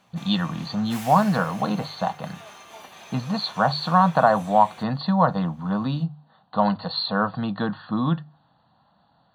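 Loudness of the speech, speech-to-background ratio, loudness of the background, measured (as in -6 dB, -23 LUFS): -23.5 LUFS, 19.0 dB, -42.5 LUFS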